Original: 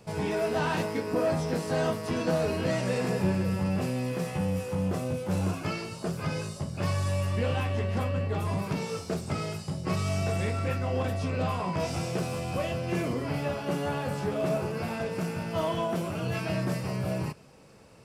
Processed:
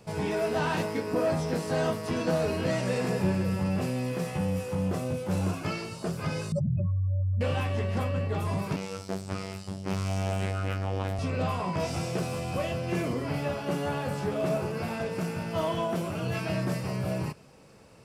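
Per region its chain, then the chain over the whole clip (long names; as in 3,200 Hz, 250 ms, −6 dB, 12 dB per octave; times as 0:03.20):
0:06.52–0:07.41: expanding power law on the bin magnitudes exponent 3.3 + envelope flattener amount 100%
0:08.76–0:11.19: phases set to zero 96 Hz + highs frequency-modulated by the lows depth 0.34 ms
whole clip: no processing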